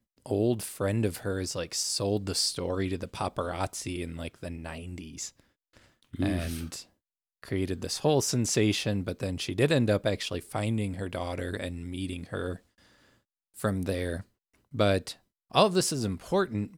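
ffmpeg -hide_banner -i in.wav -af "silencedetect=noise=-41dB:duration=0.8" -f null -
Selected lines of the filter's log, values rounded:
silence_start: 12.56
silence_end: 13.57 | silence_duration: 1.01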